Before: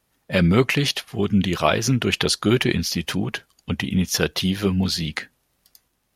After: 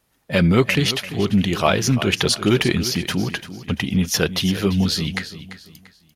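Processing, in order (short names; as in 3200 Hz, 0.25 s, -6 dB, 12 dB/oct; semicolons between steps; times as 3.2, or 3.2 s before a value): in parallel at -10.5 dB: soft clip -18 dBFS, distortion -10 dB; on the sum: feedback echo 0.342 s, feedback 33%, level -13.5 dB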